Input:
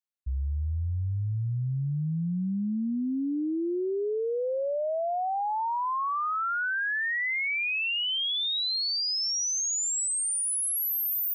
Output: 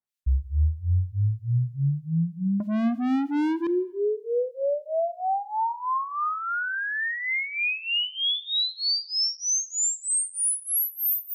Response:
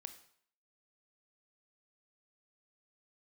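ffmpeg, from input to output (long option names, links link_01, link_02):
-filter_complex "[0:a]acrossover=split=1600[link_01][link_02];[link_01]aeval=exprs='val(0)*(1-1/2+1/2*cos(2*PI*3.2*n/s))':channel_layout=same[link_03];[link_02]aeval=exprs='val(0)*(1-1/2-1/2*cos(2*PI*3.2*n/s))':channel_layout=same[link_04];[link_03][link_04]amix=inputs=2:normalize=0,asettb=1/sr,asplit=3[link_05][link_06][link_07];[link_05]atrim=end=2.604[link_08];[link_06]atrim=start=2.6:end=3.67,asetpts=PTS-STARTPTS,afade=type=in:duration=0.004:curve=qsin,afade=type=out:start_time=1.066:duration=0.004:curve=qsin,asplit=2[link_09][link_10];[link_10]highpass=frequency=720:poles=1,volume=36dB,asoftclip=type=tanh:threshold=-25.5dB[link_11];[link_09][link_11]amix=inputs=2:normalize=0,lowpass=frequency=1600:poles=1,volume=-6dB[link_12];[link_07]atrim=start=3.666[link_13];[link_08][link_12]acrossfade=duration=0.004:curve1=hsin:curve2=qsin[link_14];[link_14][link_13]acrossfade=duration=0.004:curve1=qsin:curve2=hsin,asplit=2[link_15][link_16];[1:a]atrim=start_sample=2205,asetrate=32634,aresample=44100,lowshelf=frequency=150:gain=10.5[link_17];[link_16][link_17]afir=irnorm=-1:irlink=0,volume=-3dB[link_18];[link_15][link_18]amix=inputs=2:normalize=0,volume=3dB"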